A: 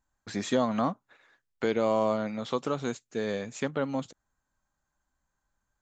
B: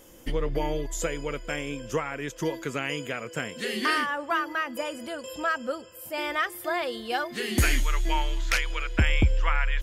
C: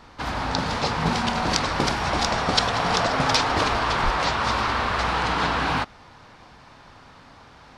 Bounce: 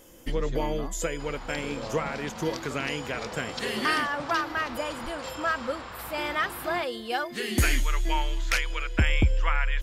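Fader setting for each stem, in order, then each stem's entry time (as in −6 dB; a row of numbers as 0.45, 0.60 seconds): −13.0, −0.5, −16.5 decibels; 0.00, 0.00, 1.00 seconds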